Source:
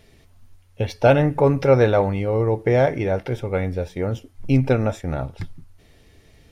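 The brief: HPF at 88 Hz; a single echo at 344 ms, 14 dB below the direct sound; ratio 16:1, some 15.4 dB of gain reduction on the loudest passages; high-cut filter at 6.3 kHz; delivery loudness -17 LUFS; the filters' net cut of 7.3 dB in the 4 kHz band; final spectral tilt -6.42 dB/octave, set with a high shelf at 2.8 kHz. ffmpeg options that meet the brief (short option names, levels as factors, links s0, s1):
-af "highpass=88,lowpass=6300,highshelf=f=2800:g=-4.5,equalizer=f=4000:t=o:g=-5.5,acompressor=threshold=0.0562:ratio=16,aecho=1:1:344:0.2,volume=5.31"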